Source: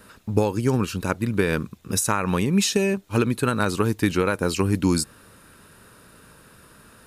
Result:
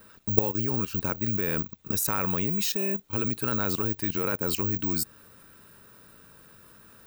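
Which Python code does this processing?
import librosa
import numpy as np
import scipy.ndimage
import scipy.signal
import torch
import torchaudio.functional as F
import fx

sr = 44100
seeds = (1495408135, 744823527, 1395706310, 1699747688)

y = (np.kron(scipy.signal.resample_poly(x, 1, 2), np.eye(2)[0]) * 2)[:len(x)]
y = fx.level_steps(y, sr, step_db=13)
y = y * 10.0 ** (-1.0 / 20.0)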